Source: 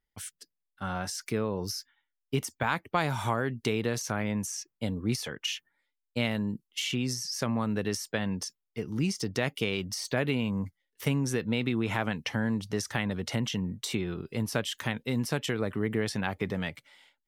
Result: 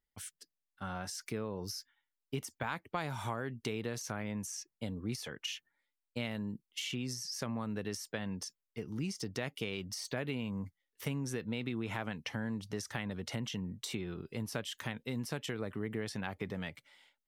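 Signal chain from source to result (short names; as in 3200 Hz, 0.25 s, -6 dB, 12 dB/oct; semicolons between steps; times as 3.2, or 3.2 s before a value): compressor 1.5:1, threshold -34 dBFS, peak gain reduction 5 dB; gain -5 dB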